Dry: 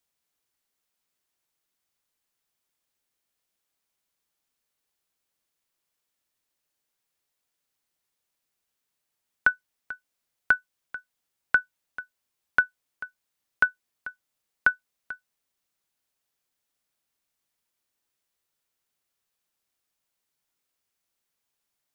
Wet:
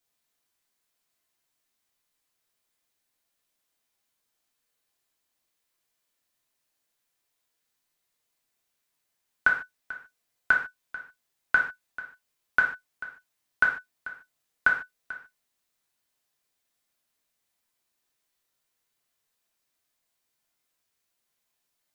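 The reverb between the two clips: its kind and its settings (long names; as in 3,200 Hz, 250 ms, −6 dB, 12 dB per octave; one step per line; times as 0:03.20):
reverb whose tail is shaped and stops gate 170 ms falling, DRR −2 dB
level −1.5 dB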